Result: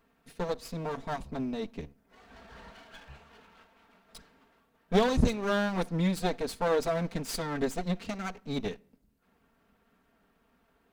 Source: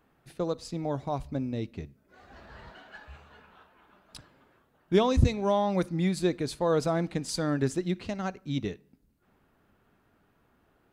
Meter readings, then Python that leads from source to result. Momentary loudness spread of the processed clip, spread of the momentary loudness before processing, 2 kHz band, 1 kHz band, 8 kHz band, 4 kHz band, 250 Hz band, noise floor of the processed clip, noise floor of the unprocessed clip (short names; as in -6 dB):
22 LU, 22 LU, +3.0 dB, -1.5 dB, -1.5 dB, -0.5 dB, -2.5 dB, -70 dBFS, -69 dBFS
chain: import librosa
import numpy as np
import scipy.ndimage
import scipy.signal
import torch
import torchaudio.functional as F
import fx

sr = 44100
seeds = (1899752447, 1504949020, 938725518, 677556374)

y = fx.lower_of_two(x, sr, delay_ms=4.4)